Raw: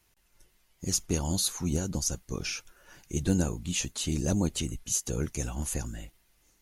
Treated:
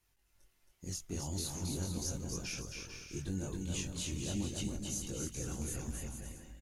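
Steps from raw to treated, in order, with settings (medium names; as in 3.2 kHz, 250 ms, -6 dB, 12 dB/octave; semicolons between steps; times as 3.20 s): peak limiter -21 dBFS, peak gain reduction 9 dB; chorus voices 4, 0.6 Hz, delay 22 ms, depth 1.9 ms; bouncing-ball echo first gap 270 ms, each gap 0.65×, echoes 5; trim -5.5 dB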